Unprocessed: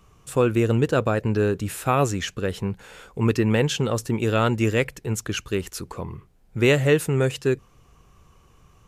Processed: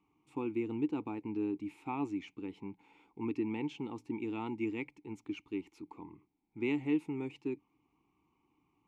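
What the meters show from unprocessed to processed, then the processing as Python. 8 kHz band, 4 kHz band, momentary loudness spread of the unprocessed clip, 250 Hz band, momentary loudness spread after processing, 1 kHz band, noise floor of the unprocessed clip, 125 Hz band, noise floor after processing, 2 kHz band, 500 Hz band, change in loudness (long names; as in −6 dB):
below −30 dB, −23.0 dB, 12 LU, −10.0 dB, 15 LU, −16.5 dB, −57 dBFS, −24.5 dB, −78 dBFS, −19.0 dB, −19.0 dB, −15.0 dB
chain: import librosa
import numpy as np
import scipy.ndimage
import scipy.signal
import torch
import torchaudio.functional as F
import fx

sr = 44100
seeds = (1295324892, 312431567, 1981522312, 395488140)

y = fx.vowel_filter(x, sr, vowel='u')
y = y * librosa.db_to_amplitude(-2.5)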